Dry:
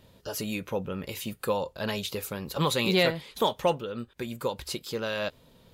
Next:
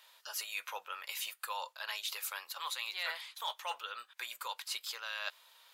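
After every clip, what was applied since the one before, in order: HPF 970 Hz 24 dB/oct; reverse; compressor 5:1, threshold -40 dBFS, peak gain reduction 16.5 dB; reverse; gain +3.5 dB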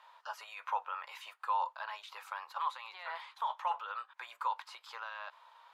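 limiter -32 dBFS, peak gain reduction 10.5 dB; band-pass 940 Hz, Q 2.6; gain +12 dB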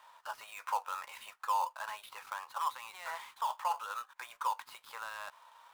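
switching dead time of 0.073 ms; gain +1 dB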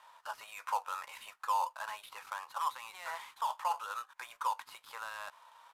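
downsampling 32000 Hz

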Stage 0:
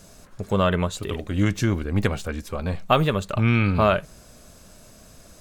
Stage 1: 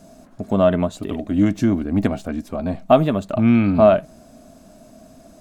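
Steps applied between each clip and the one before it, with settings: small resonant body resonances 260/650 Hz, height 17 dB, ringing for 30 ms; gain -5.5 dB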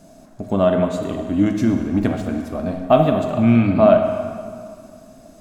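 plate-style reverb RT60 2.1 s, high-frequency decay 0.8×, DRR 3.5 dB; gain -1 dB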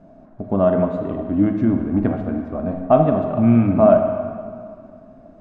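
LPF 1400 Hz 12 dB/oct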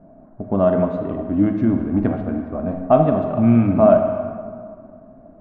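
low-pass opened by the level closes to 1300 Hz, open at -12.5 dBFS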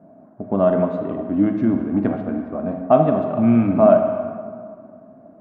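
HPF 140 Hz 12 dB/oct

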